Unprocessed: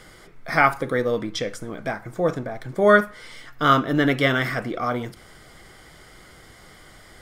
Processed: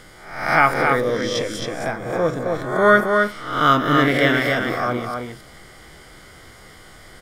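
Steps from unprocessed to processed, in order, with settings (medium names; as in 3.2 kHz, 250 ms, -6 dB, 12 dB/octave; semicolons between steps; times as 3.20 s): reverse spectral sustain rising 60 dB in 0.70 s; delay 268 ms -4.5 dB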